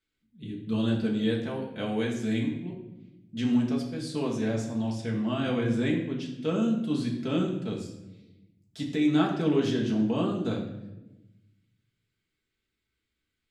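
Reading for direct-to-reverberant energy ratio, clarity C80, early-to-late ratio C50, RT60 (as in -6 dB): -2.0 dB, 8.5 dB, 6.0 dB, not exponential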